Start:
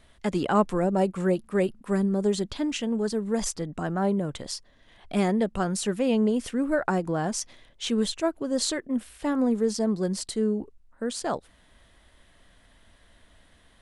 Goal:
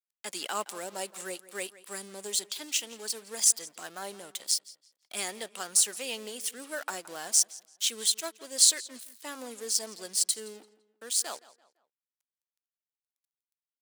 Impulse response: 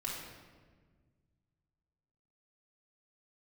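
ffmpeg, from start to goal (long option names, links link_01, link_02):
-filter_complex "[0:a]aeval=exprs='sgn(val(0))*max(abs(val(0))-0.00473,0)':channel_layout=same,highpass=420,asplit=2[link_01][link_02];[link_02]adelay=169,lowpass=frequency=4700:poles=1,volume=-18dB,asplit=2[link_03][link_04];[link_04]adelay=169,lowpass=frequency=4700:poles=1,volume=0.38,asplit=2[link_05][link_06];[link_06]adelay=169,lowpass=frequency=4700:poles=1,volume=0.38[link_07];[link_03][link_05][link_07]amix=inputs=3:normalize=0[link_08];[link_01][link_08]amix=inputs=2:normalize=0,crystalizer=i=8:c=0,adynamicequalizer=threshold=0.0141:dfrequency=1900:dqfactor=0.7:tfrequency=1900:tqfactor=0.7:attack=5:release=100:ratio=0.375:range=3:mode=boostabove:tftype=highshelf,volume=-13.5dB"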